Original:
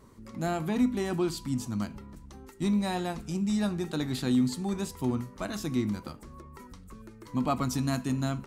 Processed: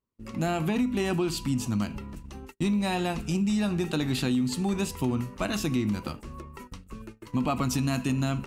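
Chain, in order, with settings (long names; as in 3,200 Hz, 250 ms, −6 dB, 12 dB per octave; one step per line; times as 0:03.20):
in parallel at −0.5 dB: brickwall limiter −23.5 dBFS, peak gain reduction 7.5 dB
on the sum: parametric band 2,700 Hz +10.5 dB 0.29 octaves
downward compressor, threshold −23 dBFS, peak gain reduction 6.5 dB
low-shelf EQ 110 Hz +2 dB
noise gate −40 dBFS, range −39 dB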